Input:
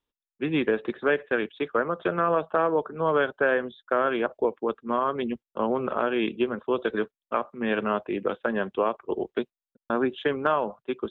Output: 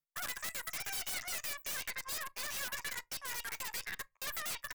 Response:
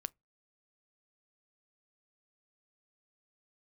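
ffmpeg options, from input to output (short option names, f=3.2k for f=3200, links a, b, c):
-filter_complex "[0:a]asuperstop=centerf=910:order=20:qfactor=6.9,asetrate=85689,aresample=44100,atempo=0.514651,aeval=exprs='0.299*(cos(1*acos(clip(val(0)/0.299,-1,1)))-cos(1*PI/2))+0.0168*(cos(3*acos(clip(val(0)/0.299,-1,1)))-cos(3*PI/2))+0.0841*(cos(4*acos(clip(val(0)/0.299,-1,1)))-cos(4*PI/2))+0.00944*(cos(5*acos(clip(val(0)/0.299,-1,1)))-cos(5*PI/2))+0.0119*(cos(6*acos(clip(val(0)/0.299,-1,1)))-cos(6*PI/2))':c=same,highshelf=f=2.8k:g=11,aeval=exprs='(tanh(15.8*val(0)+0.3)-tanh(0.3))/15.8':c=same,asetrate=103194,aresample=44100,acrossover=split=200|1100[a][b][c];[b]alimiter=level_in=13dB:limit=-24dB:level=0:latency=1,volume=-13dB[d];[a][d][c]amix=inputs=3:normalize=0[e];[1:a]atrim=start_sample=2205[f];[e][f]afir=irnorm=-1:irlink=0,aeval=exprs='(mod(18.8*val(0)+1,2)-1)/18.8':c=same,volume=-7.5dB"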